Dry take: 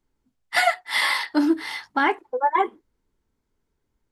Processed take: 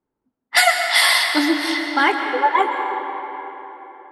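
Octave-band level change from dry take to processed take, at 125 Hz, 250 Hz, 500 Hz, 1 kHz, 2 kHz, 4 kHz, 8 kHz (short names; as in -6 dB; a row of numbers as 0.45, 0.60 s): n/a, +1.5 dB, +3.5 dB, +5.0 dB, +6.5 dB, +10.0 dB, +13.0 dB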